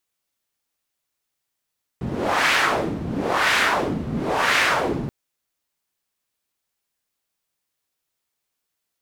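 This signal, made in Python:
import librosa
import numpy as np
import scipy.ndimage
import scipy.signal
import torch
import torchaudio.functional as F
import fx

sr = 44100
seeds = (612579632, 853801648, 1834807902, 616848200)

y = fx.wind(sr, seeds[0], length_s=3.08, low_hz=170.0, high_hz=2000.0, q=1.5, gusts=3, swing_db=8.5)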